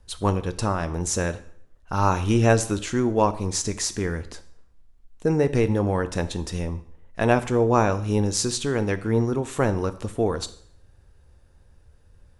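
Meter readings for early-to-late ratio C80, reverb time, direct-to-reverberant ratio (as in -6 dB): 18.0 dB, 0.60 s, 11.0 dB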